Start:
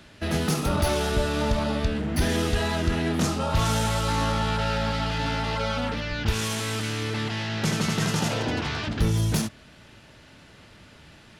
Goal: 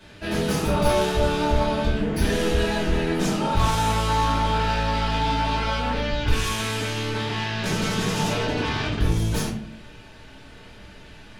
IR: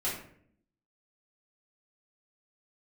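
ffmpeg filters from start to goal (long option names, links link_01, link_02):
-filter_complex "[0:a]asoftclip=type=tanh:threshold=-21dB,asubboost=boost=2.5:cutoff=52[link_01];[1:a]atrim=start_sample=2205,asetrate=52920,aresample=44100[link_02];[link_01][link_02]afir=irnorm=-1:irlink=0"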